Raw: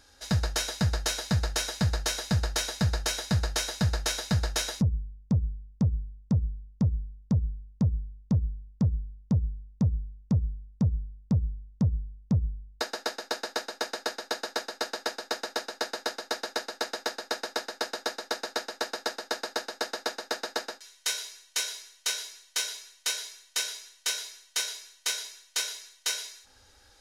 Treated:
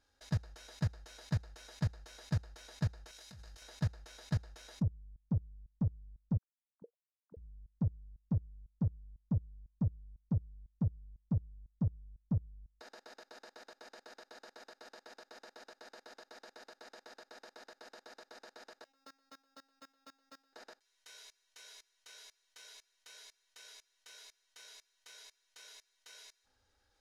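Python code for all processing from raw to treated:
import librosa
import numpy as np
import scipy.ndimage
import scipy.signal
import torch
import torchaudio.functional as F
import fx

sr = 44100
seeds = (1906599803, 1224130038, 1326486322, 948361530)

y = fx.chain(x, sr, fx.high_shelf(hz=2200.0, db=10.0),
    fx.over_compress(threshold_db=-29.0, ratio=-0.5),
    fx.doubler(ms=21.0, db=-13), at=(3.11, 3.62))
y = fx.chain(y, sr, fx.sine_speech(),
    fx.highpass(hz=190.0, slope=12),
    fx.auto_wah(base_hz=470.0, top_hz=1600.0, q=10.0, full_db=-22.0, direction='down'), at=(6.38, 7.37))
y = fx.chain(y, sr, fx.high_shelf(hz=8000.0, db=4.5),
    fx.comb_fb(f0_hz=270.0, decay_s=0.32, harmonics='all', damping=0.0, mix_pct=100),
    fx.resample_bad(factor=2, down='filtered', up='hold'), at=(18.84, 20.53))
y = fx.level_steps(y, sr, step_db=23)
y = fx.high_shelf(y, sr, hz=4100.0, db=-7.5)
y = y * 10.0 ** (-5.5 / 20.0)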